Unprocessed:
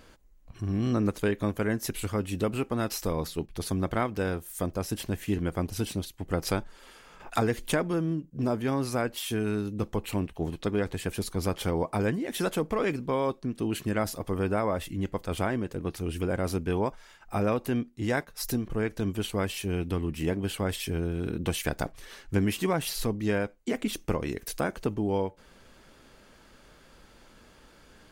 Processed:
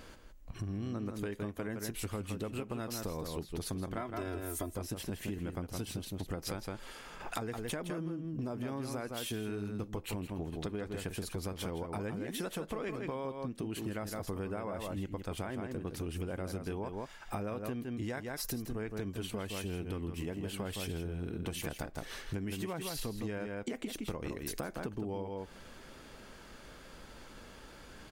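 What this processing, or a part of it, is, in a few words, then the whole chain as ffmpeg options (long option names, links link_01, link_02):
serial compression, leveller first: -filter_complex "[0:a]asettb=1/sr,asplit=3[link_01][link_02][link_03];[link_01]atrim=end=3.974[link_04];[link_02]atrim=start=3.97:end=4.73,asetpts=PTS-STARTPTS,afade=type=in:duration=0.004:curve=qsin,afade=type=out:start_time=0.756:duration=0.004:curve=qsin,aecho=1:1:3:0.97,atrim=end_sample=33516[link_05];[link_03]atrim=start=4.726[link_06];[link_04][link_05]acrossfade=duration=0.004:curve1=hsin:curve2=qsin[link_07];[link_07][link_06]acrossfade=duration=0.004:curve1=qsin:curve2=hsin,asplit=2[link_08][link_09];[link_09]adelay=163.3,volume=-7dB,highshelf=frequency=4000:gain=-3.67[link_10];[link_08][link_10]amix=inputs=2:normalize=0,acompressor=threshold=-35dB:ratio=1.5,acompressor=threshold=-38dB:ratio=6,volume=2.5dB"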